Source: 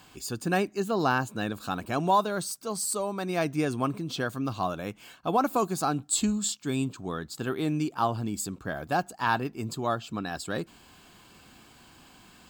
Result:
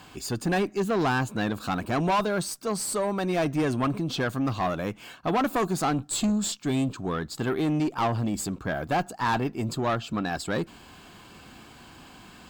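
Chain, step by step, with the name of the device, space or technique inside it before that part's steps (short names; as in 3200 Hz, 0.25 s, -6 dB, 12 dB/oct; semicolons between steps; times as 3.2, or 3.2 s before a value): tube preamp driven hard (tube stage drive 27 dB, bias 0.2; high shelf 4600 Hz -6.5 dB); gain +7 dB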